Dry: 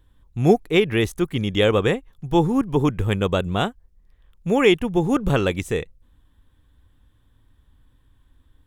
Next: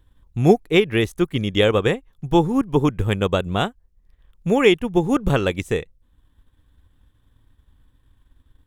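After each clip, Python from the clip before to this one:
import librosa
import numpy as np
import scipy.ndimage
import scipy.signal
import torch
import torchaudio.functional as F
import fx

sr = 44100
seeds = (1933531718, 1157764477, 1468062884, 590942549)

y = fx.transient(x, sr, attack_db=3, sustain_db=-4)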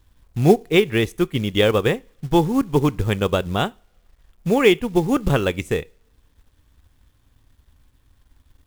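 y = fx.rev_double_slope(x, sr, seeds[0], early_s=0.33, late_s=1.8, knee_db=-27, drr_db=19.5)
y = fx.quant_companded(y, sr, bits=6)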